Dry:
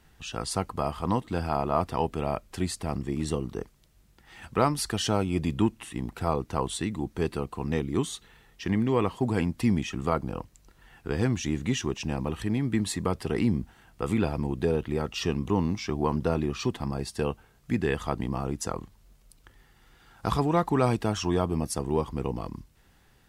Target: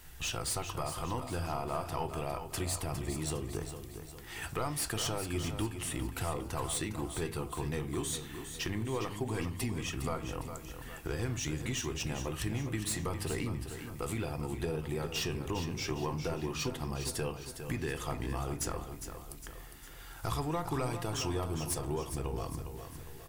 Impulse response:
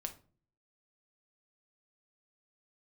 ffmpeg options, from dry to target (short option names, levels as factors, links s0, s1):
-filter_complex "[0:a]flanger=delay=4:depth=7.9:regen=88:speed=0.42:shape=sinusoidal,acompressor=threshold=0.00891:ratio=3,equalizer=f=200:w=2.8:g=-12,crystalizer=i=6.5:c=0,asoftclip=type=tanh:threshold=0.0316,aecho=1:1:407|814|1221|1628|2035:0.355|0.17|0.0817|0.0392|0.0188,asplit=2[s0][s1];[1:a]atrim=start_sample=2205,lowpass=3100,lowshelf=f=380:g=9[s2];[s1][s2]afir=irnorm=-1:irlink=0,volume=1.12[s3];[s0][s3]amix=inputs=2:normalize=0"